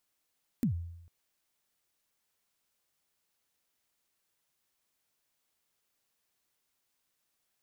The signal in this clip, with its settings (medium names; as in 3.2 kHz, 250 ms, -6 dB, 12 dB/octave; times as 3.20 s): kick drum length 0.45 s, from 270 Hz, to 85 Hz, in 102 ms, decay 0.85 s, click on, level -23 dB